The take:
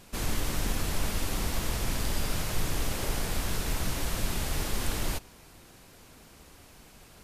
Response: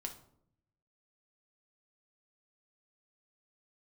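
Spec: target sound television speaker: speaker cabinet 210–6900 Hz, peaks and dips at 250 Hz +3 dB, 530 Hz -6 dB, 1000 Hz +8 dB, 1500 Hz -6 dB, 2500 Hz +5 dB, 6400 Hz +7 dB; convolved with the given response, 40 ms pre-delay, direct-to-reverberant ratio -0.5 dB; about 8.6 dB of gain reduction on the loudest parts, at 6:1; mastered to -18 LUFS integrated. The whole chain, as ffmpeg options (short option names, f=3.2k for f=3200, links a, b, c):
-filter_complex "[0:a]acompressor=threshold=-32dB:ratio=6,asplit=2[a][b];[1:a]atrim=start_sample=2205,adelay=40[c];[b][c]afir=irnorm=-1:irlink=0,volume=2.5dB[d];[a][d]amix=inputs=2:normalize=0,highpass=f=210:w=0.5412,highpass=f=210:w=1.3066,equalizer=f=250:t=q:w=4:g=3,equalizer=f=530:t=q:w=4:g=-6,equalizer=f=1k:t=q:w=4:g=8,equalizer=f=1.5k:t=q:w=4:g=-6,equalizer=f=2.5k:t=q:w=4:g=5,equalizer=f=6.4k:t=q:w=4:g=7,lowpass=f=6.9k:w=0.5412,lowpass=f=6.9k:w=1.3066,volume=19dB"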